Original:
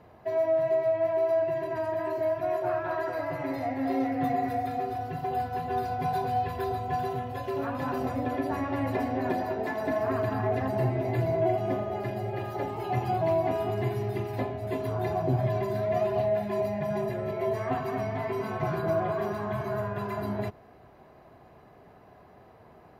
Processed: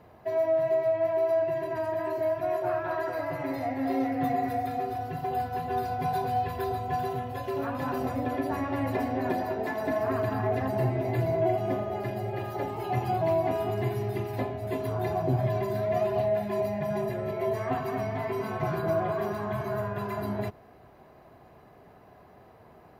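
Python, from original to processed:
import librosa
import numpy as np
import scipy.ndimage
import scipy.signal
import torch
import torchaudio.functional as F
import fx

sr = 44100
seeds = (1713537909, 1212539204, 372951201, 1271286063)

y = fx.high_shelf(x, sr, hz=11000.0, db=6.5)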